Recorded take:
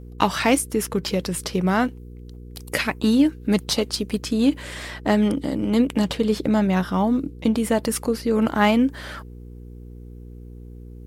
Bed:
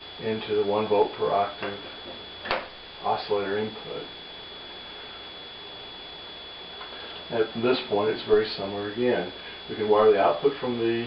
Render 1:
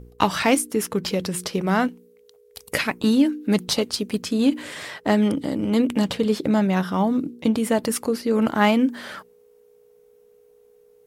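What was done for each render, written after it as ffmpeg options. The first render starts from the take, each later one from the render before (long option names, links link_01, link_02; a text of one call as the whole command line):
ffmpeg -i in.wav -af "bandreject=frequency=60:width_type=h:width=4,bandreject=frequency=120:width_type=h:width=4,bandreject=frequency=180:width_type=h:width=4,bandreject=frequency=240:width_type=h:width=4,bandreject=frequency=300:width_type=h:width=4,bandreject=frequency=360:width_type=h:width=4" out.wav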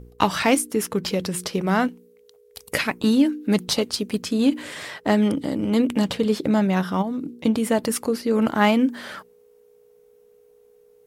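ffmpeg -i in.wav -filter_complex "[0:a]asplit=3[link_01][link_02][link_03];[link_01]afade=type=out:start_time=7.01:duration=0.02[link_04];[link_02]acompressor=threshold=-24dB:ratio=6:attack=3.2:release=140:knee=1:detection=peak,afade=type=in:start_time=7.01:duration=0.02,afade=type=out:start_time=7.41:duration=0.02[link_05];[link_03]afade=type=in:start_time=7.41:duration=0.02[link_06];[link_04][link_05][link_06]amix=inputs=3:normalize=0" out.wav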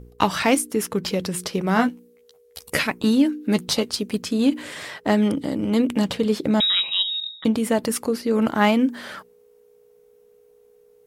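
ffmpeg -i in.wav -filter_complex "[0:a]asettb=1/sr,asplit=3[link_01][link_02][link_03];[link_01]atrim=end=1.754[link_04];[link_02]atrim=start=1.75:end=2.87,asetpts=PTS-STARTPTS,afade=type=in:duration=0.004:curve=qsin,afade=type=out:start_time=1.116:duration=0.004:curve=qsin,asplit=2[link_05][link_06];[link_06]adelay=13,volume=-3dB[link_07];[link_05][link_07]amix=inputs=2:normalize=0,atrim=end_sample=49392[link_08];[link_03]atrim=start=2.866[link_09];[link_04][link_08]acrossfade=duration=0.004:curve1=hsin:curve2=qsin[link_10];[link_10][link_09]acrossfade=duration=0.004:curve1=qsin:curve2=hsin,asettb=1/sr,asplit=3[link_11][link_12][link_13];[link_11]atrim=end=3.454[link_14];[link_12]atrim=start=3.45:end=3.86,asetpts=PTS-STARTPTS,afade=type=in:duration=0.004:curve=qsin,afade=type=out:start_time=0.406:duration=0.004:curve=qsin,asplit=2[link_15][link_16];[link_16]adelay=13,volume=-11.5dB[link_17];[link_15][link_17]amix=inputs=2:normalize=0,atrim=end_sample=18081[link_18];[link_13]atrim=start=3.856[link_19];[link_14][link_18]acrossfade=duration=0.004:curve1=hsin:curve2=qsin[link_20];[link_20][link_19]acrossfade=duration=0.004:curve1=qsin:curve2=hsin,asettb=1/sr,asplit=3[link_21][link_22][link_23];[link_21]atrim=end=6.604[link_24];[link_22]atrim=start=6.6:end=7.45,asetpts=PTS-STARTPTS,afade=type=in:duration=0.004:curve=qsin,afade=type=out:start_time=0.846:duration=0.004:curve=qsin,lowpass=frequency=3400:width_type=q:width=0.5098,lowpass=frequency=3400:width_type=q:width=0.6013,lowpass=frequency=3400:width_type=q:width=0.9,lowpass=frequency=3400:width_type=q:width=2.563,afreqshift=-4000[link_25];[link_23]atrim=start=7.446[link_26];[link_24][link_25]acrossfade=duration=0.004:curve1=hsin:curve2=qsin[link_27];[link_27][link_26]acrossfade=duration=0.004:curve1=qsin:curve2=hsin" out.wav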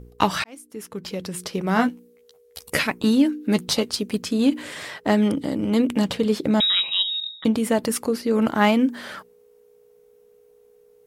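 ffmpeg -i in.wav -filter_complex "[0:a]asplit=2[link_01][link_02];[link_01]atrim=end=0.44,asetpts=PTS-STARTPTS,afade=type=out:start_time=0.436:duration=0.004:curve=hsin[link_03];[link_02]atrim=start=0.44,asetpts=PTS-STARTPTS,afade=type=in:duration=1.45[link_04];[link_03][link_04]concat=n=2:v=0:a=1" out.wav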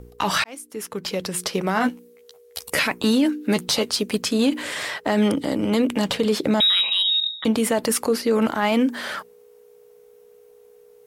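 ffmpeg -i in.wav -filter_complex "[0:a]acrossover=split=420[link_01][link_02];[link_02]acontrast=66[link_03];[link_01][link_03]amix=inputs=2:normalize=0,alimiter=limit=-11.5dB:level=0:latency=1:release=30" out.wav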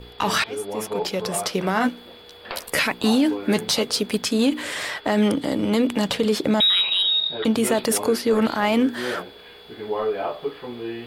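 ffmpeg -i in.wav -i bed.wav -filter_complex "[1:a]volume=-6dB[link_01];[0:a][link_01]amix=inputs=2:normalize=0" out.wav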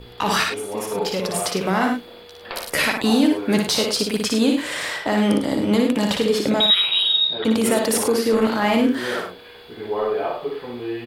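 ffmpeg -i in.wav -af "aecho=1:1:58.31|102:0.631|0.398" out.wav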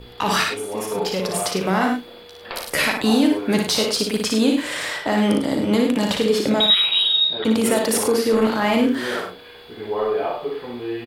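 ffmpeg -i in.wav -filter_complex "[0:a]asplit=2[link_01][link_02];[link_02]adelay=37,volume=-12.5dB[link_03];[link_01][link_03]amix=inputs=2:normalize=0" out.wav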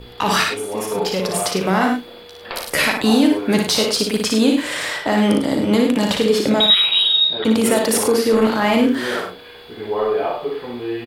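ffmpeg -i in.wav -af "volume=2.5dB" out.wav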